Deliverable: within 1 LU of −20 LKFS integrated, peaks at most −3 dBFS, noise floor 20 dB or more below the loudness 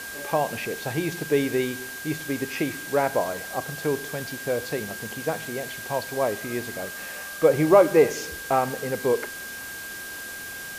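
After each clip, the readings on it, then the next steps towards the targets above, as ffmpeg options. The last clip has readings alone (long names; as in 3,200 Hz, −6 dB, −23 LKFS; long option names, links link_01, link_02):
interfering tone 1,600 Hz; level of the tone −36 dBFS; background noise floor −37 dBFS; target noise floor −46 dBFS; integrated loudness −26.0 LKFS; sample peak −5.5 dBFS; target loudness −20.0 LKFS
→ -af "bandreject=frequency=1600:width=30"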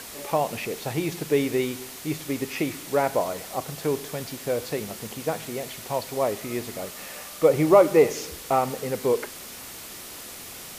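interfering tone none found; background noise floor −40 dBFS; target noise floor −46 dBFS
→ -af "afftdn=noise_reduction=6:noise_floor=-40"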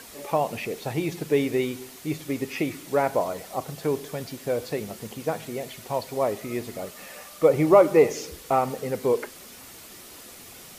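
background noise floor −45 dBFS; target noise floor −46 dBFS
→ -af "afftdn=noise_reduction=6:noise_floor=-45"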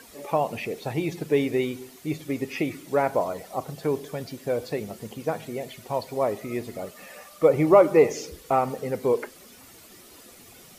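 background noise floor −50 dBFS; integrated loudness −26.0 LKFS; sample peak −5.5 dBFS; target loudness −20.0 LKFS
→ -af "volume=6dB,alimiter=limit=-3dB:level=0:latency=1"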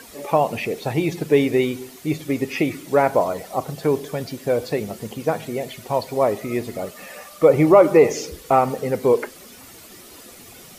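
integrated loudness −20.5 LKFS; sample peak −3.0 dBFS; background noise floor −44 dBFS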